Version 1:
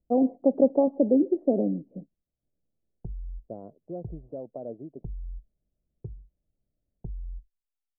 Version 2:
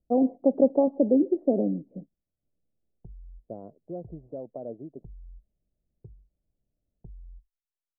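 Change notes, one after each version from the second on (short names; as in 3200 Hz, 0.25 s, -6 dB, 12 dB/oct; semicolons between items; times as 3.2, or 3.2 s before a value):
background -9.0 dB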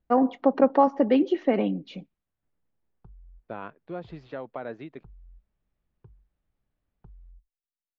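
background -5.5 dB; master: remove Chebyshev low-pass 650 Hz, order 4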